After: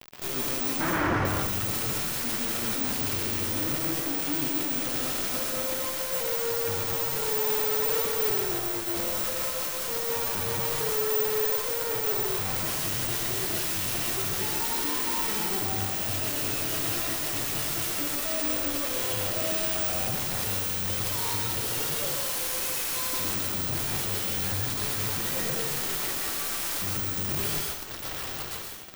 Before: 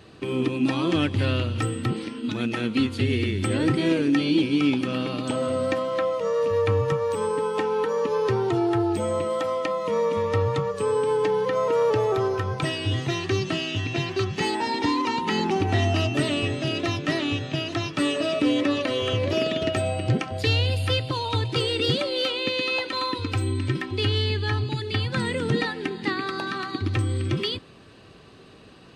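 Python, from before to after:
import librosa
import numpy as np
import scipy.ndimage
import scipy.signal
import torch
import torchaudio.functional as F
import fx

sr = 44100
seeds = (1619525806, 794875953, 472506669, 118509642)

y = x + 10.0 ** (-20.0 / 20.0) * np.pad(x, (int(1076 * sr / 1000.0), 0))[:len(x)]
y = fx.fuzz(y, sr, gain_db=35.0, gate_db=-42.0)
y = (np.kron(scipy.signal.resample_poly(y, 1, 2), np.eye(2)[0]) * 2)[:len(y)]
y = fx.gaussian_blur(y, sr, sigma=13.0, at=(0.79, 1.25), fade=0.02)
y = 10.0 ** (-24.0 / 20.0) * (np.abs((y / 10.0 ** (-24.0 / 20.0) + 3.0) % 4.0 - 2.0) - 1.0)
y = fx.rev_plate(y, sr, seeds[0], rt60_s=0.76, hf_ratio=0.85, predelay_ms=105, drr_db=-0.5)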